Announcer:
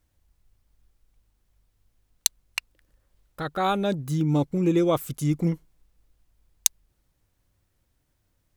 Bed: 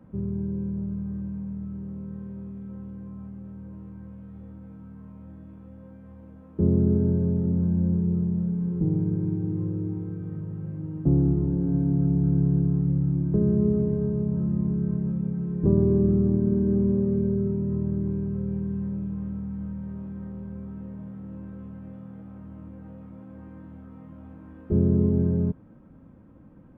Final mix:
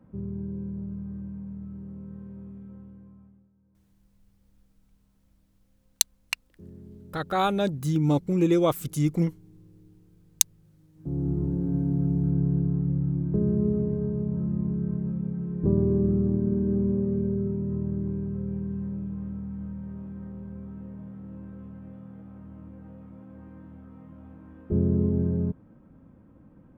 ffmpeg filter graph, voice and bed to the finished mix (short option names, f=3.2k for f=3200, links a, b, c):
-filter_complex "[0:a]adelay=3750,volume=0dB[a];[1:a]volume=18.5dB,afade=t=out:st=2.54:d=0.96:silence=0.0891251,afade=t=in:st=10.95:d=0.48:silence=0.0707946[b];[a][b]amix=inputs=2:normalize=0"